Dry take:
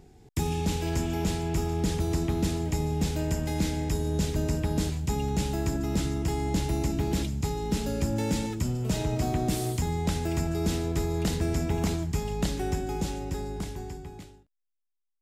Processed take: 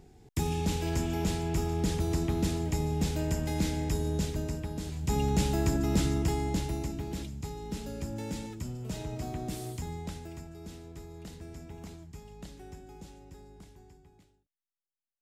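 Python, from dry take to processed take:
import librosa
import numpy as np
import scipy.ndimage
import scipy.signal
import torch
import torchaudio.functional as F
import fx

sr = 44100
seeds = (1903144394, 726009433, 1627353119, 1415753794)

y = fx.gain(x, sr, db=fx.line((4.07, -2.0), (4.82, -10.0), (5.16, 1.0), (6.17, 1.0), (7.05, -9.0), (9.93, -9.0), (10.51, -17.5)))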